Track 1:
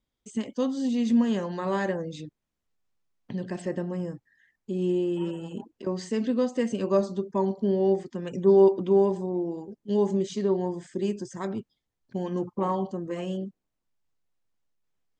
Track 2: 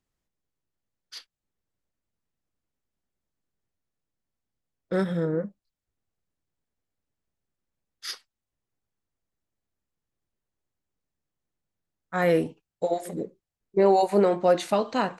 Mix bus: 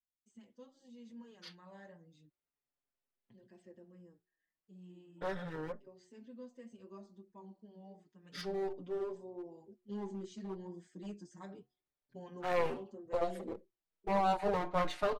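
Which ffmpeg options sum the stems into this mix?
-filter_complex "[0:a]bandreject=f=364.6:t=h:w=4,bandreject=f=729.2:t=h:w=4,flanger=delay=4.9:depth=10:regen=-61:speed=0.83:shape=triangular,volume=0.335,afade=t=in:st=8.2:d=0.35:silence=0.298538[s0];[1:a]acrossover=split=300 4300:gain=0.251 1 0.2[s1][s2][s3];[s1][s2][s3]amix=inputs=3:normalize=0,adelay=300,volume=0.708[s4];[s0][s4]amix=inputs=2:normalize=0,aeval=exprs='clip(val(0),-1,0.015)':c=same,asplit=2[s5][s6];[s6]adelay=5.4,afreqshift=-0.31[s7];[s5][s7]amix=inputs=2:normalize=1"

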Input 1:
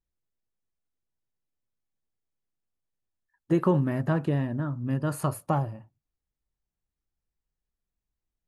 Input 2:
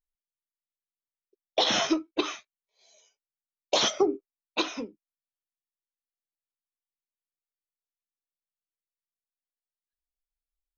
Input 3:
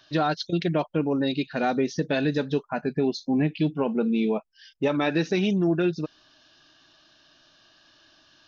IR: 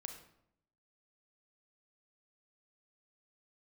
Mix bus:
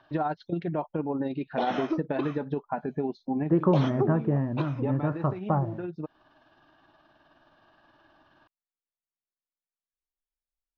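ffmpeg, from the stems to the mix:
-filter_complex "[0:a]lowpass=2200,acrusher=bits=8:mix=0:aa=0.000001,volume=1.06,asplit=2[s0][s1];[1:a]volume=0.668[s2];[2:a]equalizer=f=860:t=o:w=0.54:g=8,acompressor=threshold=0.0316:ratio=2.5,tremolo=f=19:d=0.36,volume=1.33[s3];[s1]apad=whole_len=373681[s4];[s3][s4]sidechaincompress=threshold=0.0398:ratio=8:attack=16:release=944[s5];[s0][s2][s5]amix=inputs=3:normalize=0,lowpass=1500"

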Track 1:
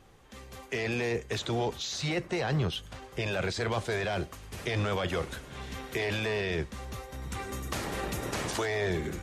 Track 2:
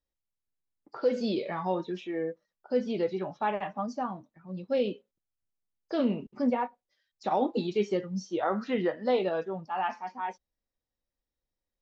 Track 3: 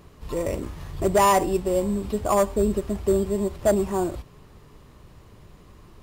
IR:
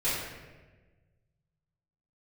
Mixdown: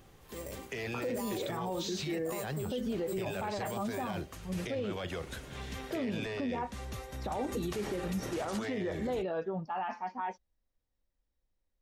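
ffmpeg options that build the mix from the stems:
-filter_complex "[0:a]equalizer=f=1100:w=1.5:g=-2.5,acompressor=threshold=0.02:ratio=6,volume=0.944[s0];[1:a]highshelf=f=4300:g=-6.5,volume=1.19[s1];[2:a]highpass=150,aemphasis=mode=production:type=50fm,volume=0.126[s2];[s1][s2]amix=inputs=2:normalize=0,lowshelf=f=95:g=9.5,alimiter=limit=0.0841:level=0:latency=1:release=58,volume=1[s3];[s0][s3]amix=inputs=2:normalize=0,alimiter=level_in=1.41:limit=0.0631:level=0:latency=1:release=55,volume=0.708"

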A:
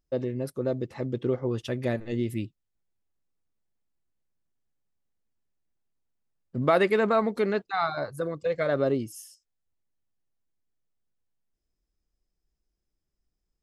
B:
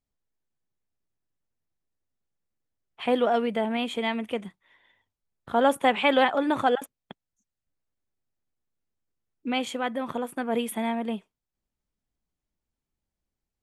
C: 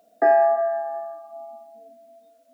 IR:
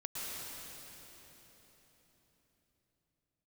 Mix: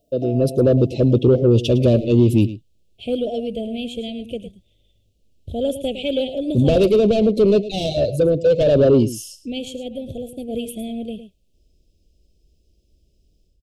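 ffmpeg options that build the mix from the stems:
-filter_complex "[0:a]dynaudnorm=f=240:g=3:m=6.31,asplit=2[s0][s1];[s1]highpass=f=720:p=1,volume=10,asoftclip=type=tanh:threshold=0.944[s2];[s0][s2]amix=inputs=2:normalize=0,lowpass=f=2200:p=1,volume=0.501,volume=0.531,asplit=2[s3][s4];[s4]volume=0.168[s5];[1:a]asubboost=boost=11:cutoff=58,volume=1.12,asplit=3[s6][s7][s8];[s7]volume=0.266[s9];[2:a]aecho=1:1:6.8:0.55,volume=0.531[s10];[s8]apad=whole_len=112141[s11];[s10][s11]sidechaincompress=threshold=0.0316:ratio=8:attack=16:release=186[s12];[s5][s9]amix=inputs=2:normalize=0,aecho=0:1:108:1[s13];[s3][s6][s12][s13]amix=inputs=4:normalize=0,asuperstop=centerf=1300:order=12:qfactor=0.64,asoftclip=type=tanh:threshold=0.398,equalizer=f=72:t=o:w=2.7:g=14"

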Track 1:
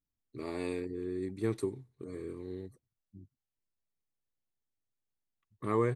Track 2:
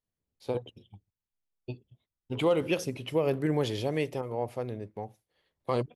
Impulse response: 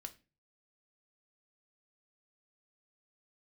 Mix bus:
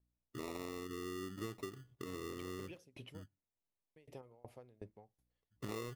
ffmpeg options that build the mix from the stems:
-filter_complex "[0:a]agate=range=0.398:threshold=0.001:ratio=16:detection=peak,acrusher=samples=28:mix=1:aa=0.000001,volume=0.891,asplit=2[s0][s1];[s1]volume=0.2[s2];[1:a]acompressor=threshold=0.0251:ratio=6,aeval=exprs='val(0)+0.000316*(sin(2*PI*60*n/s)+sin(2*PI*2*60*n/s)/2+sin(2*PI*3*60*n/s)/3+sin(2*PI*4*60*n/s)/4+sin(2*PI*5*60*n/s)/5)':c=same,aeval=exprs='val(0)*pow(10,-28*if(lt(mod(2.7*n/s,1),2*abs(2.7)/1000),1-mod(2.7*n/s,1)/(2*abs(2.7)/1000),(mod(2.7*n/s,1)-2*abs(2.7)/1000)/(1-2*abs(2.7)/1000))/20)':c=same,volume=0.473,asplit=3[s3][s4][s5];[s3]atrim=end=3.23,asetpts=PTS-STARTPTS,afade=t=out:st=3.226:d=0.004:c=hsin[s6];[s4]atrim=start=3.23:end=3.96,asetpts=PTS-STARTPTS,volume=0[s7];[s5]atrim=start=3.96,asetpts=PTS-STARTPTS,afade=t=in:d=0.004:c=hsin[s8];[s6][s7][s8]concat=n=3:v=0:a=1[s9];[2:a]atrim=start_sample=2205[s10];[s2][s10]afir=irnorm=-1:irlink=0[s11];[s0][s9][s11]amix=inputs=3:normalize=0,acompressor=threshold=0.01:ratio=10"

